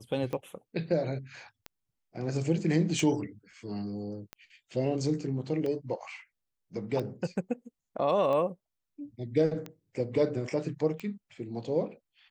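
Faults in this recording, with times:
scratch tick 45 rpm −23 dBFS

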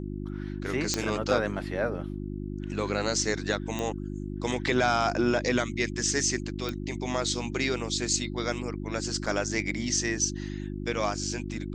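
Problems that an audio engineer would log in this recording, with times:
mains hum 50 Hz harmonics 7 −35 dBFS
0:00.94: click −11 dBFS
0:03.79: click −18 dBFS
0:06.69: click −17 dBFS
0:09.26–0:09.27: drop-out 5.7 ms

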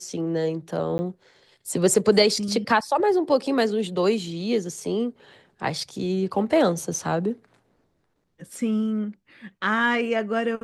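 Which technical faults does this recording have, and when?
0:00.98–0:00.99: drop-out 10 ms

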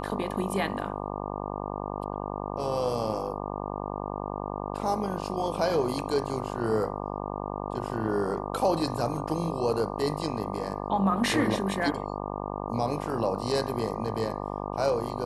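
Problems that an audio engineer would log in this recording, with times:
mains buzz 50 Hz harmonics 24 −34 dBFS

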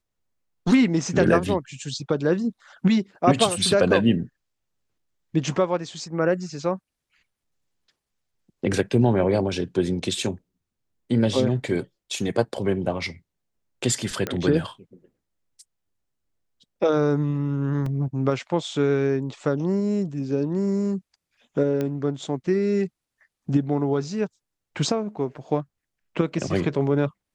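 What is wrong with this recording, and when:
0:14.27: click −12 dBFS
0:17.86: drop-out 3.4 ms
0:21.81: click −15 dBFS

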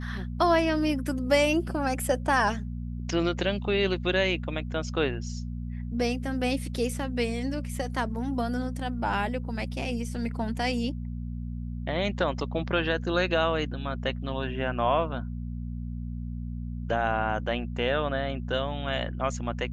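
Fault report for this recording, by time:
mains hum 60 Hz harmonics 4 −34 dBFS

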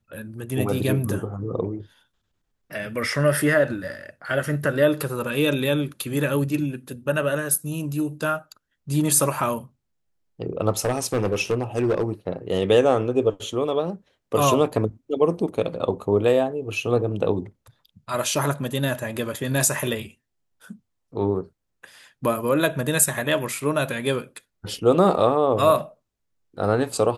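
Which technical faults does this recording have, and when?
0:10.85–0:12.12: clipping −16.5 dBFS

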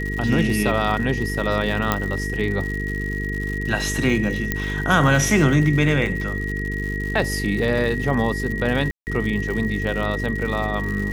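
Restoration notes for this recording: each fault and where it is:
mains buzz 50 Hz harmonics 9 −27 dBFS
surface crackle 130 per second −28 dBFS
whistle 1,900 Hz −28 dBFS
0:01.92: click −4 dBFS
0:04.52: click −7 dBFS
0:08.91–0:09.07: drop-out 159 ms

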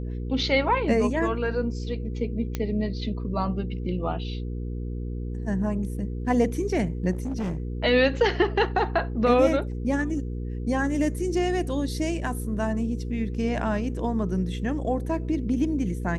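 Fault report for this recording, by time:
mains hum 60 Hz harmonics 8 −31 dBFS
0:02.55: click −14 dBFS
0:07.11–0:07.60: clipping −25 dBFS

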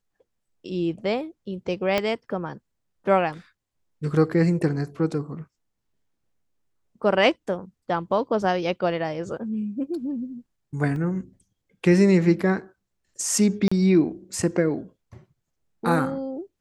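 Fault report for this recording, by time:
0:01.98: click −9 dBFS
0:10.96: drop-out 2.1 ms
0:13.68–0:13.71: drop-out 35 ms

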